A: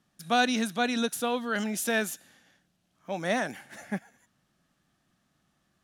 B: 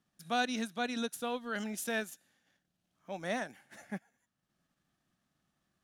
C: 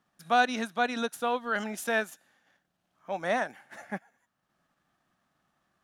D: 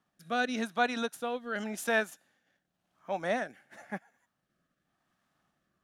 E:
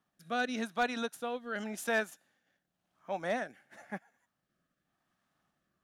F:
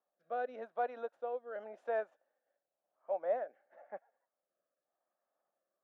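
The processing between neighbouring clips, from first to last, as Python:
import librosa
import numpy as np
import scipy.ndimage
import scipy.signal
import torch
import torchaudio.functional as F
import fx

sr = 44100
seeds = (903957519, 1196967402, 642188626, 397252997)

y1 = fx.transient(x, sr, attack_db=-1, sustain_db=-7)
y1 = F.gain(torch.from_numpy(y1), -7.0).numpy()
y2 = fx.peak_eq(y1, sr, hz=1000.0, db=10.5, octaves=2.5)
y3 = fx.rotary(y2, sr, hz=0.9)
y4 = np.clip(y3, -10.0 ** (-20.0 / 20.0), 10.0 ** (-20.0 / 20.0))
y4 = F.gain(torch.from_numpy(y4), -2.5).numpy()
y5 = fx.ladder_bandpass(y4, sr, hz=620.0, resonance_pct=60)
y5 = F.gain(torch.from_numpy(y5), 5.5).numpy()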